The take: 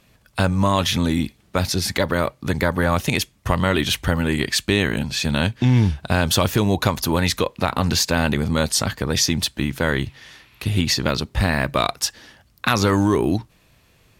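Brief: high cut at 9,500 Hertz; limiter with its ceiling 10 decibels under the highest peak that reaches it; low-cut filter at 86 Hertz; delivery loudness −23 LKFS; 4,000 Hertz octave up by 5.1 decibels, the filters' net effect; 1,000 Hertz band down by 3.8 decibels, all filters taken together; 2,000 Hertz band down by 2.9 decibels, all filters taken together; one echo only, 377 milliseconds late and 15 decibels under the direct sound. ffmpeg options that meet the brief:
ffmpeg -i in.wav -af "highpass=86,lowpass=9500,equalizer=frequency=1000:width_type=o:gain=-4,equalizer=frequency=2000:width_type=o:gain=-4.5,equalizer=frequency=4000:width_type=o:gain=7.5,alimiter=limit=-11dB:level=0:latency=1,aecho=1:1:377:0.178,volume=0.5dB" out.wav

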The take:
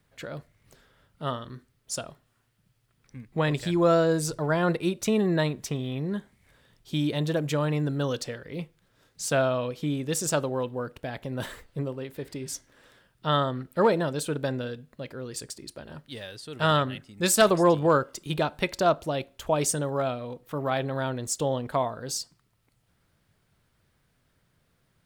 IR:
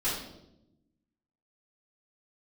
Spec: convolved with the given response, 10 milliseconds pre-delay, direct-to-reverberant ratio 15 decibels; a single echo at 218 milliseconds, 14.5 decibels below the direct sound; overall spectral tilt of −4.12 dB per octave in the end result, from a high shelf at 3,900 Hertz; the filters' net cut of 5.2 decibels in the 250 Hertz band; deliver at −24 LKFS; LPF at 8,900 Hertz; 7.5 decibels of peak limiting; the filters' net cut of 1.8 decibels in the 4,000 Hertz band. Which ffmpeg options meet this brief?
-filter_complex "[0:a]lowpass=8900,equalizer=frequency=250:width_type=o:gain=-8.5,highshelf=frequency=3900:gain=7,equalizer=frequency=4000:width_type=o:gain=-6.5,alimiter=limit=-16.5dB:level=0:latency=1,aecho=1:1:218:0.188,asplit=2[link_01][link_02];[1:a]atrim=start_sample=2205,adelay=10[link_03];[link_02][link_03]afir=irnorm=-1:irlink=0,volume=-23dB[link_04];[link_01][link_04]amix=inputs=2:normalize=0,volume=6dB"

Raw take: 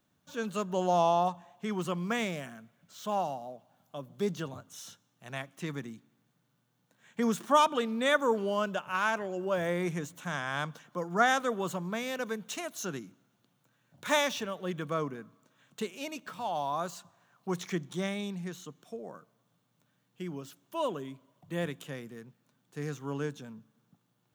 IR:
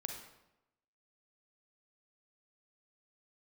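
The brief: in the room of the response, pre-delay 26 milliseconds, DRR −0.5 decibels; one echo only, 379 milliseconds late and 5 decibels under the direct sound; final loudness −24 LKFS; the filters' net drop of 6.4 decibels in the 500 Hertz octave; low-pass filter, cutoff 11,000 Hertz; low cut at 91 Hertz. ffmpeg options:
-filter_complex "[0:a]highpass=91,lowpass=11000,equalizer=frequency=500:width_type=o:gain=-8.5,aecho=1:1:379:0.562,asplit=2[link_01][link_02];[1:a]atrim=start_sample=2205,adelay=26[link_03];[link_02][link_03]afir=irnorm=-1:irlink=0,volume=1.5dB[link_04];[link_01][link_04]amix=inputs=2:normalize=0,volume=7.5dB"

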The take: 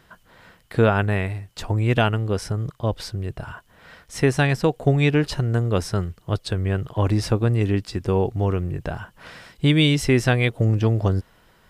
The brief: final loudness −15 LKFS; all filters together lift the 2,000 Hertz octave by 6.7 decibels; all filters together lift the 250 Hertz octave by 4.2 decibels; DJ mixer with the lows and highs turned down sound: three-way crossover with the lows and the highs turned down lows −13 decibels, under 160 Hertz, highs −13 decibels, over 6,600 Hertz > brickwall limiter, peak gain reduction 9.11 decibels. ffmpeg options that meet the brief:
ffmpeg -i in.wav -filter_complex "[0:a]acrossover=split=160 6600:gain=0.224 1 0.224[link_01][link_02][link_03];[link_01][link_02][link_03]amix=inputs=3:normalize=0,equalizer=frequency=250:width_type=o:gain=7,equalizer=frequency=2000:width_type=o:gain=8.5,volume=8.5dB,alimiter=limit=-0.5dB:level=0:latency=1" out.wav

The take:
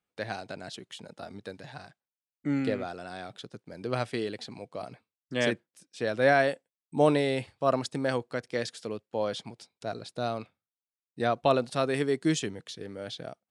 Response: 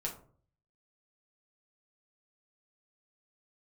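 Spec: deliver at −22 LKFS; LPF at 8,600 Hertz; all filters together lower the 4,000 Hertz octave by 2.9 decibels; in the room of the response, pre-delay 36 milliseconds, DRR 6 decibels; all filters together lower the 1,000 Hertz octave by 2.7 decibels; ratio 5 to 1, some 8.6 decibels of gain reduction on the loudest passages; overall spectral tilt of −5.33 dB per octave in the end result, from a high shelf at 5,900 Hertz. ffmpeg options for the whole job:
-filter_complex "[0:a]lowpass=8600,equalizer=frequency=1000:width_type=o:gain=-4.5,equalizer=frequency=4000:width_type=o:gain=-5.5,highshelf=frequency=5900:gain=7,acompressor=threshold=-28dB:ratio=5,asplit=2[link_01][link_02];[1:a]atrim=start_sample=2205,adelay=36[link_03];[link_02][link_03]afir=irnorm=-1:irlink=0,volume=-7dB[link_04];[link_01][link_04]amix=inputs=2:normalize=0,volume=13.5dB"

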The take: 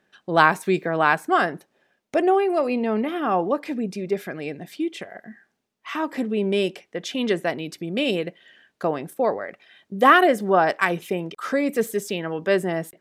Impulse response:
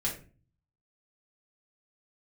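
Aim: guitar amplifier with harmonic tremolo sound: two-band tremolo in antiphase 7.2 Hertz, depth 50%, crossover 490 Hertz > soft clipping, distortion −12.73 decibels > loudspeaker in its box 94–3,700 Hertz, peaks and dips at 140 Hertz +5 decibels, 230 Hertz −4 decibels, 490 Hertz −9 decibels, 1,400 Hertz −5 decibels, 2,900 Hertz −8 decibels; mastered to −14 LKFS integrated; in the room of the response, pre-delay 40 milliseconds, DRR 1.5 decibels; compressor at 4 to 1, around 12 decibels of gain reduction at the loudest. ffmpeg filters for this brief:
-filter_complex "[0:a]acompressor=threshold=-24dB:ratio=4,asplit=2[link_01][link_02];[1:a]atrim=start_sample=2205,adelay=40[link_03];[link_02][link_03]afir=irnorm=-1:irlink=0,volume=-6.5dB[link_04];[link_01][link_04]amix=inputs=2:normalize=0,acrossover=split=490[link_05][link_06];[link_05]aeval=exprs='val(0)*(1-0.5/2+0.5/2*cos(2*PI*7.2*n/s))':channel_layout=same[link_07];[link_06]aeval=exprs='val(0)*(1-0.5/2-0.5/2*cos(2*PI*7.2*n/s))':channel_layout=same[link_08];[link_07][link_08]amix=inputs=2:normalize=0,asoftclip=threshold=-24.5dB,highpass=94,equalizer=frequency=140:width_type=q:width=4:gain=5,equalizer=frequency=230:width_type=q:width=4:gain=-4,equalizer=frequency=490:width_type=q:width=4:gain=-9,equalizer=frequency=1400:width_type=q:width=4:gain=-5,equalizer=frequency=2900:width_type=q:width=4:gain=-8,lowpass=frequency=3700:width=0.5412,lowpass=frequency=3700:width=1.3066,volume=20.5dB"

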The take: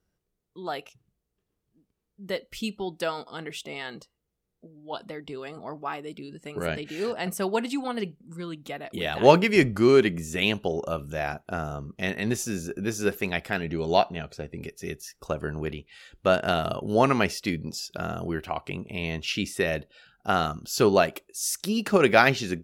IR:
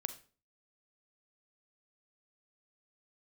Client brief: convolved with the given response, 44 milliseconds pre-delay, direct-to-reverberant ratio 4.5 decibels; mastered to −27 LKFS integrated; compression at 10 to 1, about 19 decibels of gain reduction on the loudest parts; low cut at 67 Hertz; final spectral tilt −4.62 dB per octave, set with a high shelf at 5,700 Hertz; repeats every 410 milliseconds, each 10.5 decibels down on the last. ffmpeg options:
-filter_complex "[0:a]highpass=67,highshelf=frequency=5700:gain=-8,acompressor=threshold=-29dB:ratio=10,aecho=1:1:410|820|1230:0.299|0.0896|0.0269,asplit=2[link_01][link_02];[1:a]atrim=start_sample=2205,adelay=44[link_03];[link_02][link_03]afir=irnorm=-1:irlink=0,volume=-4dB[link_04];[link_01][link_04]amix=inputs=2:normalize=0,volume=7dB"

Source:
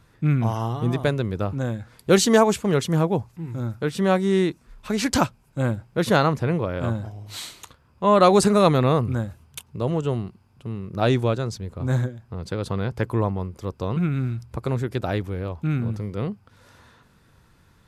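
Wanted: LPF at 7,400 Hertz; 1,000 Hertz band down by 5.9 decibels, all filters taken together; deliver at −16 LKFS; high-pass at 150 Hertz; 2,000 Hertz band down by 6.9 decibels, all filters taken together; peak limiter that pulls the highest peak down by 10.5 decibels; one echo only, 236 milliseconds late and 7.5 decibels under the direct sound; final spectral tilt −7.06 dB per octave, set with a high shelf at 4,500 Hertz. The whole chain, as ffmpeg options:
ffmpeg -i in.wav -af "highpass=150,lowpass=7400,equalizer=frequency=1000:width_type=o:gain=-6,equalizer=frequency=2000:width_type=o:gain=-5.5,highshelf=frequency=4500:gain=-8.5,alimiter=limit=-17dB:level=0:latency=1,aecho=1:1:236:0.422,volume=12.5dB" out.wav

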